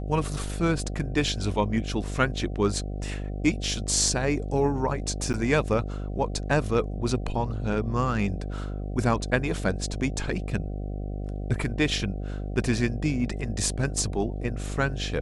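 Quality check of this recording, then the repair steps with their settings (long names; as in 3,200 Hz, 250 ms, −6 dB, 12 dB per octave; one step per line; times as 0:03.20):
mains buzz 50 Hz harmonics 15 −32 dBFS
0:05.33–0:05.34: drop-out 9.9 ms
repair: hum removal 50 Hz, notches 15
repair the gap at 0:05.33, 9.9 ms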